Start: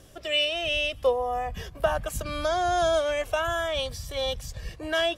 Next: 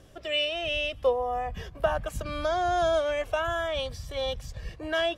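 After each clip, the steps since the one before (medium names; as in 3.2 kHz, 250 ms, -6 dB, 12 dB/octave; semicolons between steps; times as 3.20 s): treble shelf 5.4 kHz -10 dB; trim -1 dB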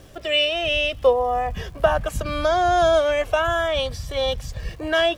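crackle 410 per s -51 dBFS; trim +7.5 dB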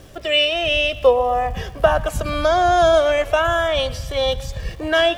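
modulated delay 122 ms, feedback 54%, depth 75 cents, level -19 dB; trim +3 dB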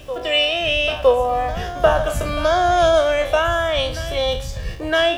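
spectral sustain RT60 0.36 s; reverse echo 962 ms -14 dB; trim -1 dB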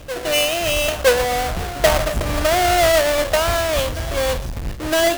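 square wave that keeps the level; trim -4 dB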